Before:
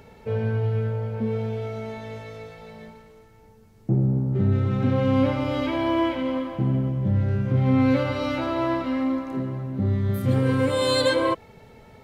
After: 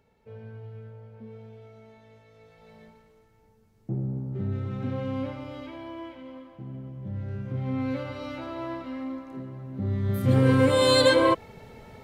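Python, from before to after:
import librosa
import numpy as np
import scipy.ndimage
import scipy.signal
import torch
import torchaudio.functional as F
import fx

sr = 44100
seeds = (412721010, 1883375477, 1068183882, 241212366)

y = fx.gain(x, sr, db=fx.line((2.28, -18.0), (2.73, -9.0), (4.95, -9.0), (5.97, -17.0), (6.65, -17.0), (7.37, -10.0), (9.53, -10.0), (10.43, 2.0)))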